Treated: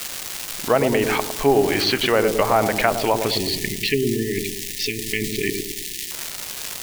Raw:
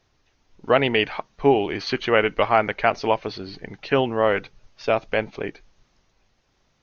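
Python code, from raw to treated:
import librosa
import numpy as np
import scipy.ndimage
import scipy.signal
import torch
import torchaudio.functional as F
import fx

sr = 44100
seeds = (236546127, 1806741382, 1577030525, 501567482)

p1 = fx.env_lowpass_down(x, sr, base_hz=1100.0, full_db=-16.0)
p2 = fx.dmg_crackle(p1, sr, seeds[0], per_s=470.0, level_db=-31.0)
p3 = fx.high_shelf(p2, sr, hz=2000.0, db=10.5)
p4 = fx.over_compress(p3, sr, threshold_db=-29.0, ratio=-1.0)
p5 = p3 + (p4 * librosa.db_to_amplitude(-2.0))
p6 = fx.quant_dither(p5, sr, seeds[1], bits=6, dither='triangular')
p7 = fx.spec_erase(p6, sr, start_s=3.32, length_s=2.79, low_hz=450.0, high_hz=1700.0)
p8 = p7 + fx.echo_wet_lowpass(p7, sr, ms=107, feedback_pct=47, hz=630.0, wet_db=-4, dry=0)
y = p8 * librosa.db_to_amplitude(-1.0)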